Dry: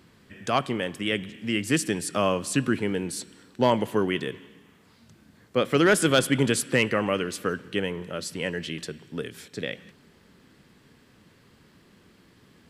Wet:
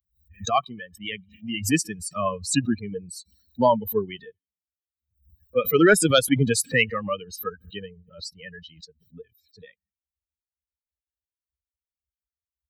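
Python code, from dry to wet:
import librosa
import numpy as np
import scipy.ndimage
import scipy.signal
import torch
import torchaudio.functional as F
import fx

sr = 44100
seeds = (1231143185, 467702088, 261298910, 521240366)

y = fx.bin_expand(x, sr, power=3.0)
y = fx.pre_swell(y, sr, db_per_s=130.0)
y = y * 10.0 ** (7.5 / 20.0)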